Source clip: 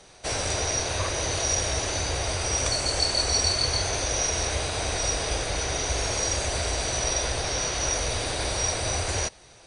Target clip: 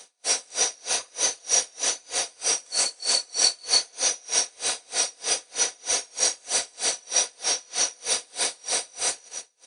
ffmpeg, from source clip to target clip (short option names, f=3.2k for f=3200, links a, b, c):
-af "highpass=340,aemphasis=mode=production:type=75kf,aecho=1:1:4.1:0.43,aecho=1:1:132|264|396|528:0.188|0.0866|0.0399|0.0183,aeval=exprs='val(0)*pow(10,-34*(0.5-0.5*cos(2*PI*3.2*n/s))/20)':c=same"